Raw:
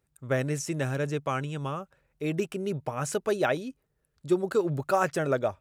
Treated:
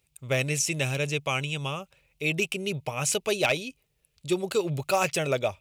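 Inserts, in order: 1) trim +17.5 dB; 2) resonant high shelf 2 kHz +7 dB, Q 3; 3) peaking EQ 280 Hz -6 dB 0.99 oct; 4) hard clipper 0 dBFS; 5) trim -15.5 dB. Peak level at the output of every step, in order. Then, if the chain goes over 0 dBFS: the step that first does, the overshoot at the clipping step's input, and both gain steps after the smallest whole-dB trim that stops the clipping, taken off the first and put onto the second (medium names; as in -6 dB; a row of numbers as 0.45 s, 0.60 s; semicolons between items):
+6.0 dBFS, +9.0 dBFS, +8.5 dBFS, 0.0 dBFS, -15.5 dBFS; step 1, 8.5 dB; step 1 +8.5 dB, step 5 -6.5 dB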